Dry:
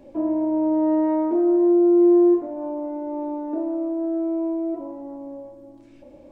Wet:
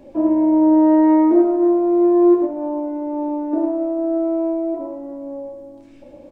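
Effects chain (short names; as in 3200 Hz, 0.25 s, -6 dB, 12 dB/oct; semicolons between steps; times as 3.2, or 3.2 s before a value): on a send: loudspeakers at several distances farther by 24 m -11 dB, 37 m -7 dB; on the sum: upward expander 1.5:1, over -27 dBFS; gain +8 dB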